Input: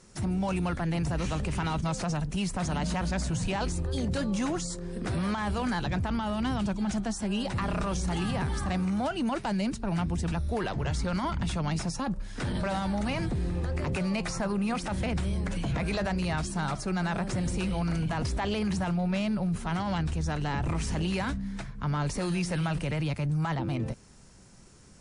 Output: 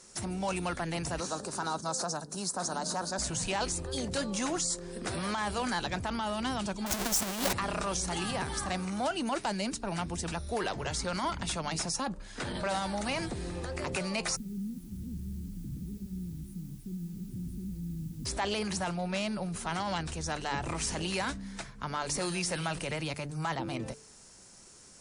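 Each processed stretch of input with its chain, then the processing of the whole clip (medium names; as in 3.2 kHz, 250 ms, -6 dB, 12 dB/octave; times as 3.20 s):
1.20–3.19 s: high-pass 190 Hz + high-order bell 2.5 kHz -15 dB 1 oct
6.86–7.53 s: square wave that keeps the level + band-stop 510 Hz, Q 16 + compressor with a negative ratio -28 dBFS, ratio -0.5
12.07–12.69 s: treble shelf 7.4 kHz -9.5 dB + band-stop 5.5 kHz, Q 14
14.35–18.25 s: inverse Chebyshev band-stop 620–7200 Hz, stop band 50 dB + added noise white -67 dBFS
whole clip: tone controls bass -10 dB, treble +7 dB; de-hum 146.6 Hz, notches 3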